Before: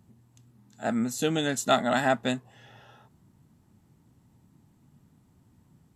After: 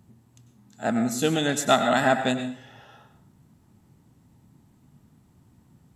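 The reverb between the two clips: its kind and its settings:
dense smooth reverb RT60 0.54 s, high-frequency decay 0.8×, pre-delay 85 ms, DRR 8 dB
level +3 dB

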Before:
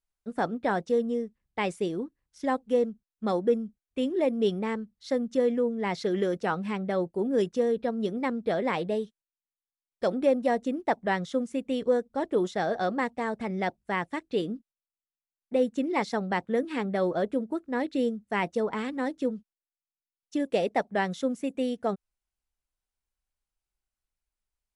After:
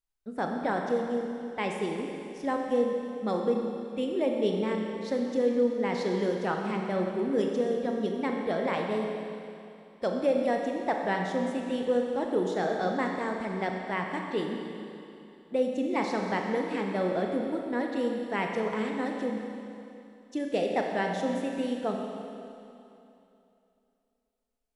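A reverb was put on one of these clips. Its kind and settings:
four-comb reverb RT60 2.8 s, combs from 29 ms, DRR 1.5 dB
level −3 dB

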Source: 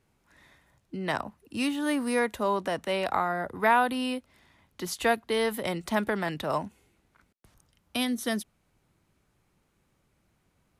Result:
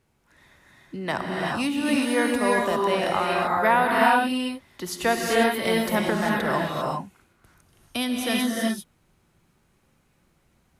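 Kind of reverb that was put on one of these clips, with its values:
reverb whose tail is shaped and stops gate 420 ms rising, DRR −2.5 dB
level +1.5 dB

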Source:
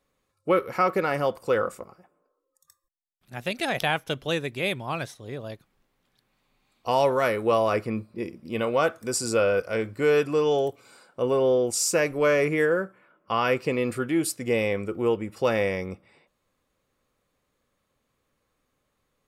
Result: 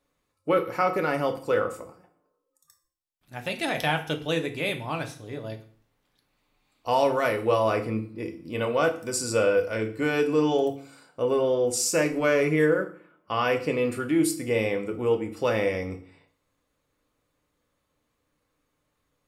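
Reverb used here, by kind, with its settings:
feedback delay network reverb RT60 0.46 s, low-frequency decay 1.3×, high-frequency decay 0.95×, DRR 4.5 dB
level −2 dB

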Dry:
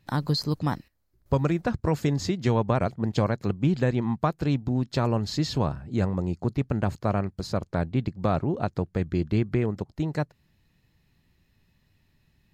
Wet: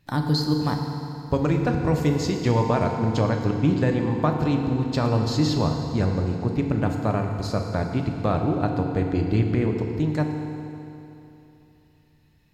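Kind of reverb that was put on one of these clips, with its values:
feedback delay network reverb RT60 3 s, high-frequency decay 0.85×, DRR 2.5 dB
level +1 dB

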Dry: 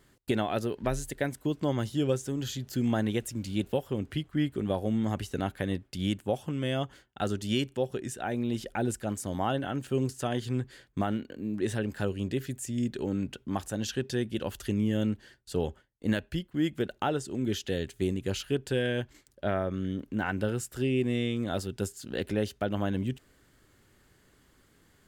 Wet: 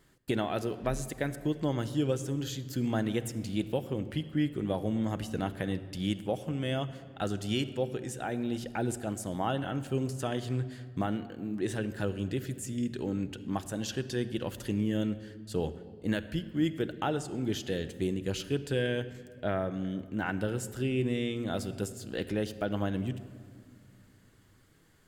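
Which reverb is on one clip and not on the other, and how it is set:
rectangular room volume 3,700 cubic metres, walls mixed, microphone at 0.61 metres
level −2 dB

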